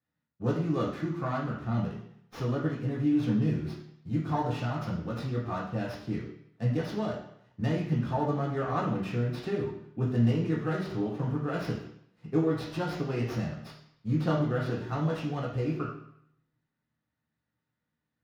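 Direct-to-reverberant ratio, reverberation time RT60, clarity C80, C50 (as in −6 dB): −4.0 dB, 0.70 s, 8.0 dB, 4.5 dB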